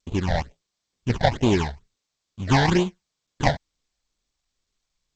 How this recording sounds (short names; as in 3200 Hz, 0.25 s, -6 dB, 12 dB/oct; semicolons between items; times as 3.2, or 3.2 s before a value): aliases and images of a low sample rate 1300 Hz, jitter 20%; phasing stages 8, 2.2 Hz, lowest notch 330–1700 Hz; G.722